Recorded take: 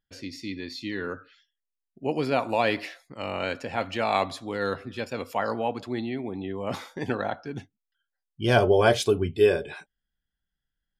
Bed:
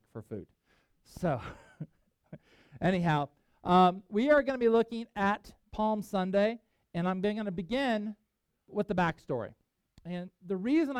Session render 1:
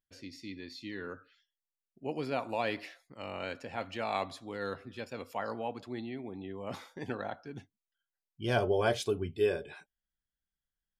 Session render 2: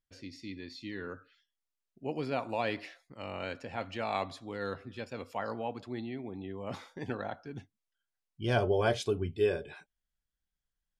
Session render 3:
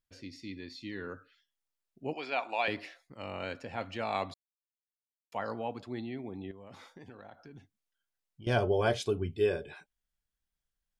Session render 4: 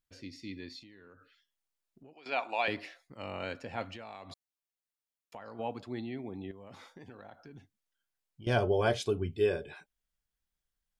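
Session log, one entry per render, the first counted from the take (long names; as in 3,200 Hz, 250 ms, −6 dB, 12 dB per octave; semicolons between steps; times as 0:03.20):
level −9 dB
Bessel low-pass filter 8,800 Hz, order 2; low-shelf EQ 110 Hz +6 dB
0:02.13–0:02.68: loudspeaker in its box 470–7,700 Hz, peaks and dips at 500 Hz −5 dB, 770 Hz +5 dB, 1,600 Hz +3 dB, 2,400 Hz +8 dB, 3,400 Hz +6 dB; 0:04.34–0:05.32: silence; 0:06.51–0:08.47: downward compressor 5 to 1, threshold −47 dBFS
0:00.79–0:02.26: downward compressor 8 to 1, threshold −52 dBFS; 0:03.93–0:05.59: downward compressor 12 to 1, threshold −41 dBFS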